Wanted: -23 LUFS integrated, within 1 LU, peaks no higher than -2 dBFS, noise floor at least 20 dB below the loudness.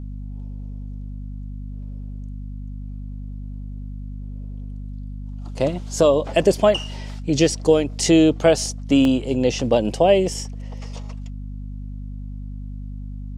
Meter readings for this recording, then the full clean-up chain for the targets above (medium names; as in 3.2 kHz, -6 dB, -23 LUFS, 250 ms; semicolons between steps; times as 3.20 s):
dropouts 1; longest dropout 1.2 ms; hum 50 Hz; highest harmonic 250 Hz; hum level -29 dBFS; loudness -19.0 LUFS; peak level -3.5 dBFS; loudness target -23.0 LUFS
-> interpolate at 9.05 s, 1.2 ms; de-hum 50 Hz, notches 5; trim -4 dB